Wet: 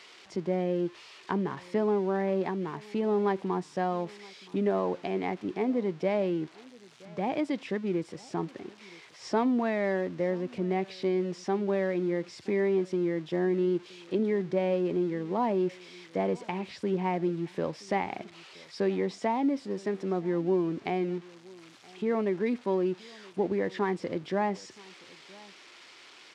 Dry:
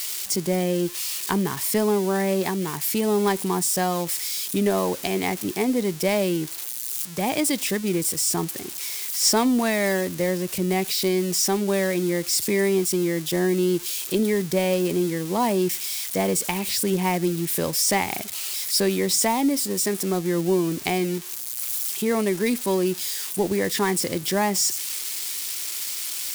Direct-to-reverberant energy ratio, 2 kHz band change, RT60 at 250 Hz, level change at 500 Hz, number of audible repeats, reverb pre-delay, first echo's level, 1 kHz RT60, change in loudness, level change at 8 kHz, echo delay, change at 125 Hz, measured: no reverb, -9.5 dB, no reverb, -5.0 dB, 1, no reverb, -23.5 dB, no reverb, -7.0 dB, under -30 dB, 973 ms, -7.5 dB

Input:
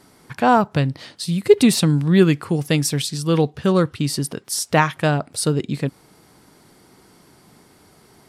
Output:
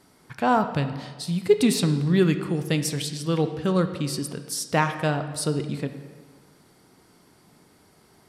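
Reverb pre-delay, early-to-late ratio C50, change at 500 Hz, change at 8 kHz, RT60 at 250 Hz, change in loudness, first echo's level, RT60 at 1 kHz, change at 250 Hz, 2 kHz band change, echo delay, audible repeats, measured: 10 ms, 10.0 dB, -5.5 dB, -6.0 dB, 1.6 s, -5.5 dB, no echo, 1.5 s, -5.5 dB, -5.5 dB, no echo, no echo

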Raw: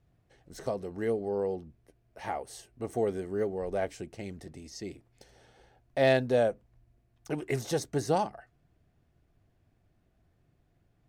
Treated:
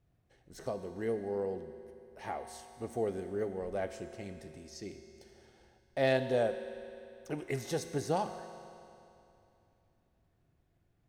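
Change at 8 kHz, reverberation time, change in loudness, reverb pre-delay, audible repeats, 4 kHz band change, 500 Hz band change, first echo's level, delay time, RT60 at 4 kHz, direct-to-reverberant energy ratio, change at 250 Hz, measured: -4.0 dB, 2.8 s, -4.5 dB, 16 ms, no echo, -4.0 dB, -4.0 dB, no echo, no echo, 2.7 s, 8.0 dB, -4.0 dB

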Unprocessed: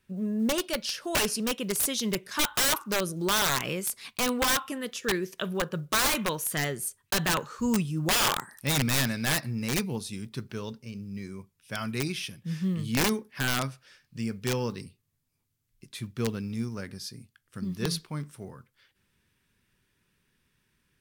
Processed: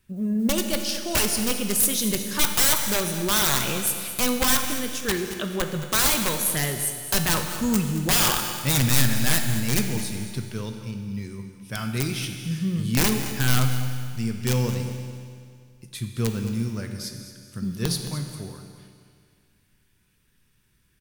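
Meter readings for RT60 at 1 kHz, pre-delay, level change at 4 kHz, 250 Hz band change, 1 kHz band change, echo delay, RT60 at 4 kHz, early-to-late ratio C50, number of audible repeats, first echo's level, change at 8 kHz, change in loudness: 2.2 s, 7 ms, +4.0 dB, +4.5 dB, +2.0 dB, 219 ms, 2.1 s, 5.5 dB, 2, -13.0 dB, +7.0 dB, +5.0 dB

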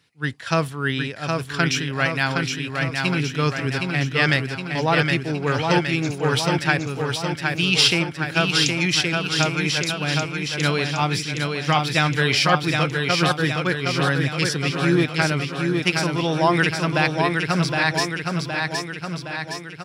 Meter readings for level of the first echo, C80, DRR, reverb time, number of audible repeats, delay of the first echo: -4.0 dB, no reverb, no reverb, no reverb, 7, 766 ms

